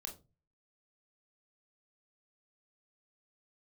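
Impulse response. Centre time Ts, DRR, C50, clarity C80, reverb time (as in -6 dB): 17 ms, 2.0 dB, 12.0 dB, 18.5 dB, 0.30 s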